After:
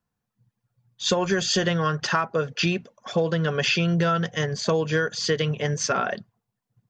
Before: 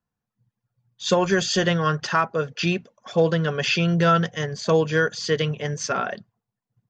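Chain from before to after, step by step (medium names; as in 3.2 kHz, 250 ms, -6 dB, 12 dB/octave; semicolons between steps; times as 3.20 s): compression, threshold -22 dBFS, peak gain reduction 8.5 dB; trim +3 dB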